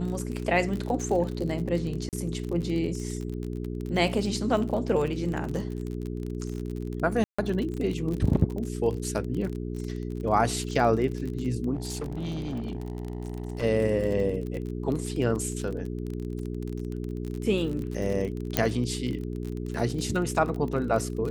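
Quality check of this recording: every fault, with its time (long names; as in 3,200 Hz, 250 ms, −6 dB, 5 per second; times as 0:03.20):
surface crackle 36 per second −31 dBFS
mains hum 60 Hz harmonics 7 −33 dBFS
0:02.09–0:02.13: drop-out 38 ms
0:07.24–0:07.38: drop-out 145 ms
0:11.75–0:13.64: clipping −28 dBFS
0:18.57: click −5 dBFS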